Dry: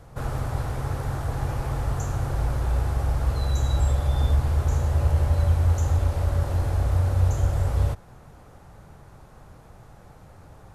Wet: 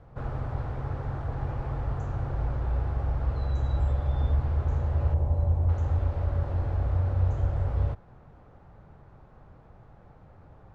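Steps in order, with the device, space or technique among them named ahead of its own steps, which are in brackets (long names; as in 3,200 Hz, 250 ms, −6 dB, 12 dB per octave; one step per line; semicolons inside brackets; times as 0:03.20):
phone in a pocket (low-pass filter 3,800 Hz 12 dB per octave; high-shelf EQ 2,400 Hz −9.5 dB)
0:05.14–0:05.69: flat-topped bell 2,600 Hz −10.5 dB 2.4 octaves
level −4 dB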